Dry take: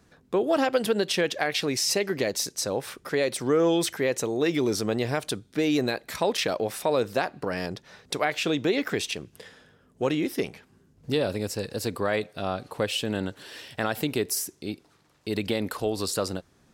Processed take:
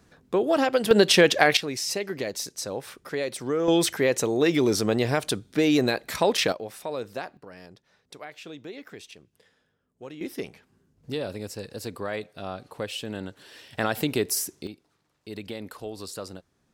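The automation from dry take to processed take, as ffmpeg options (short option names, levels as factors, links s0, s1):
-af "asetnsamples=n=441:p=0,asendcmd='0.91 volume volume 8dB;1.57 volume volume -4dB;3.68 volume volume 3dB;6.52 volume volume -8dB;7.37 volume volume -15.5dB;10.21 volume volume -5.5dB;13.73 volume volume 1.5dB;14.67 volume volume -9dB',volume=1.12"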